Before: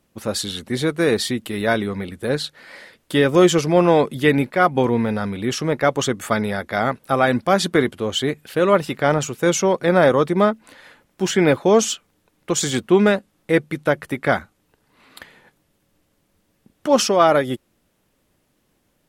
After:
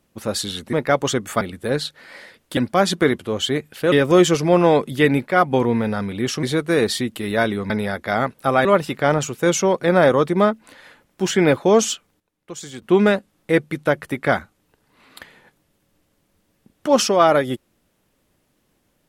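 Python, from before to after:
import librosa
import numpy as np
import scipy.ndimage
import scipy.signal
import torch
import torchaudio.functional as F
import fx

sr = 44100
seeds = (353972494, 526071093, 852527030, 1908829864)

y = fx.edit(x, sr, fx.swap(start_s=0.73, length_s=1.27, other_s=5.67, other_length_s=0.68),
    fx.move(start_s=7.3, length_s=1.35, to_s=3.16),
    fx.fade_down_up(start_s=11.87, length_s=1.28, db=-13.5, fade_s=0.33, curve='log'), tone=tone)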